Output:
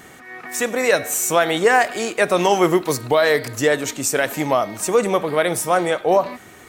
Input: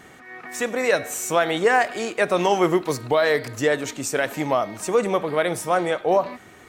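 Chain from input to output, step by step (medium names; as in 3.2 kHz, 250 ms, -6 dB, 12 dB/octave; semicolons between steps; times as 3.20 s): treble shelf 7.7 kHz +9 dB; trim +3 dB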